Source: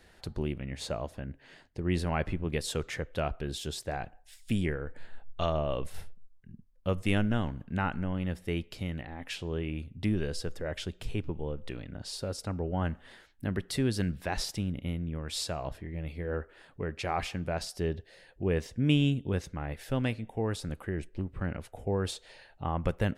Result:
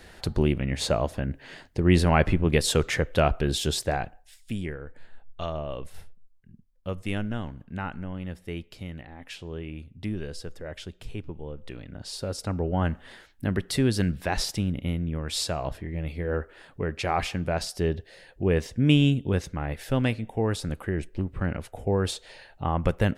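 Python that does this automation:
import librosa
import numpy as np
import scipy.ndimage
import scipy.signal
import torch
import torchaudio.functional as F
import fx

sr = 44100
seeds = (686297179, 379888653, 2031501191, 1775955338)

y = fx.gain(x, sr, db=fx.line((3.82, 10.0), (4.51, -2.5), (11.45, -2.5), (12.56, 5.5)))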